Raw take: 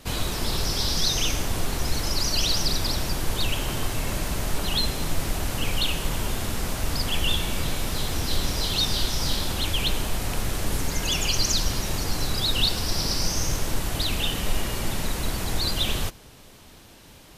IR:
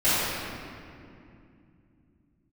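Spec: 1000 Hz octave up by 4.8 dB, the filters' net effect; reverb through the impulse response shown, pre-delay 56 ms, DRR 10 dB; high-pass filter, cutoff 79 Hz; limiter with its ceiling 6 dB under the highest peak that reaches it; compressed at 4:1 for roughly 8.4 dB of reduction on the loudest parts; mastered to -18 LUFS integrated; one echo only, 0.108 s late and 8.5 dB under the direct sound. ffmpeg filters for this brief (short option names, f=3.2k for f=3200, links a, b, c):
-filter_complex "[0:a]highpass=79,equalizer=f=1k:t=o:g=6,acompressor=threshold=-29dB:ratio=4,alimiter=level_in=0.5dB:limit=-24dB:level=0:latency=1,volume=-0.5dB,aecho=1:1:108:0.376,asplit=2[a][b];[1:a]atrim=start_sample=2205,adelay=56[c];[b][c]afir=irnorm=-1:irlink=0,volume=-28dB[d];[a][d]amix=inputs=2:normalize=0,volume=14dB"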